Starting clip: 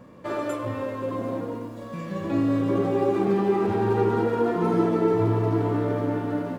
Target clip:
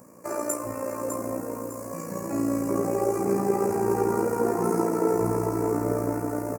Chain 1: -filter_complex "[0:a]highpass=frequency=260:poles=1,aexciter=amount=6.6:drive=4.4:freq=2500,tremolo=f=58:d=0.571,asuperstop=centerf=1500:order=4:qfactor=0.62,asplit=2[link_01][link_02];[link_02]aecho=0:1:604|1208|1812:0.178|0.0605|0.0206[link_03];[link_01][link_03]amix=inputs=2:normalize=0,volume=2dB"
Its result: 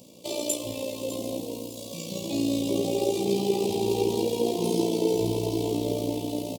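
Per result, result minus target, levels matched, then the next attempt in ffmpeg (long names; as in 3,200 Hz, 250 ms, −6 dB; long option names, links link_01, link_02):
4,000 Hz band +19.0 dB; echo-to-direct −7.5 dB
-filter_complex "[0:a]highpass=frequency=260:poles=1,aexciter=amount=6.6:drive=4.4:freq=2500,tremolo=f=58:d=0.571,asuperstop=centerf=3400:order=4:qfactor=0.62,asplit=2[link_01][link_02];[link_02]aecho=0:1:604|1208|1812:0.178|0.0605|0.0206[link_03];[link_01][link_03]amix=inputs=2:normalize=0,volume=2dB"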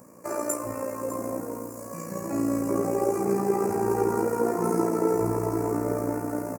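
echo-to-direct −7.5 dB
-filter_complex "[0:a]highpass=frequency=260:poles=1,aexciter=amount=6.6:drive=4.4:freq=2500,tremolo=f=58:d=0.571,asuperstop=centerf=3400:order=4:qfactor=0.62,asplit=2[link_01][link_02];[link_02]aecho=0:1:604|1208|1812|2416:0.422|0.143|0.0487|0.0166[link_03];[link_01][link_03]amix=inputs=2:normalize=0,volume=2dB"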